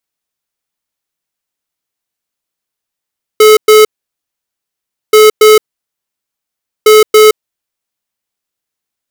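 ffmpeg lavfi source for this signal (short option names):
-f lavfi -i "aevalsrc='0.708*(2*lt(mod(430*t,1),0.5)-1)*clip(min(mod(mod(t,1.73),0.28),0.17-mod(mod(t,1.73),0.28))/0.005,0,1)*lt(mod(t,1.73),0.56)':d=5.19:s=44100"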